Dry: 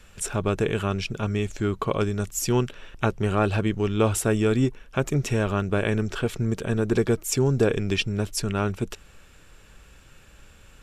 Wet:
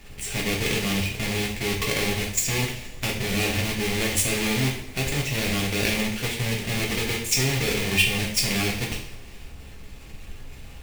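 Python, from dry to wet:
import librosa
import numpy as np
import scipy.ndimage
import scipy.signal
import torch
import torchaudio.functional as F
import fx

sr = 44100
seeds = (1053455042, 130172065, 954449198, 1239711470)

y = fx.halfwave_hold(x, sr)
y = fx.level_steps(y, sr, step_db=12)
y = fx.high_shelf_res(y, sr, hz=1700.0, db=6.5, q=3.0)
y = fx.dmg_noise_colour(y, sr, seeds[0], colour='brown', level_db=-39.0)
y = fx.rev_double_slope(y, sr, seeds[1], early_s=0.51, late_s=2.0, knee_db=-19, drr_db=-3.0)
y = F.gain(torch.from_numpy(y), -5.5).numpy()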